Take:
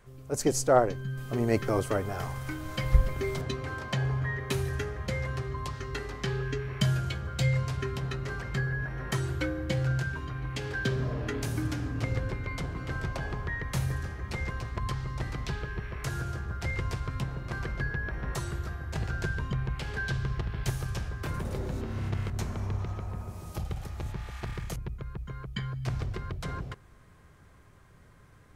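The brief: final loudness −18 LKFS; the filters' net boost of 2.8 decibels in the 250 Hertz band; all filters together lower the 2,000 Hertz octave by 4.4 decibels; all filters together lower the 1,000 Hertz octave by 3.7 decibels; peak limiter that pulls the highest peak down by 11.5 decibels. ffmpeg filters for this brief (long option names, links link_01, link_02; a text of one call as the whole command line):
ffmpeg -i in.wav -af "equalizer=frequency=250:width_type=o:gain=4.5,equalizer=frequency=1000:width_type=o:gain=-4.5,equalizer=frequency=2000:width_type=o:gain=-4,volume=15.5dB,alimiter=limit=-4dB:level=0:latency=1" out.wav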